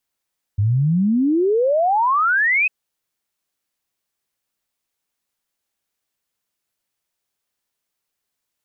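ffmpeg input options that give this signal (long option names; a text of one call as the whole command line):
ffmpeg -f lavfi -i "aevalsrc='0.2*clip(min(t,2.1-t)/0.01,0,1)*sin(2*PI*97*2.1/log(2600/97)*(exp(log(2600/97)*t/2.1)-1))':duration=2.1:sample_rate=44100" out.wav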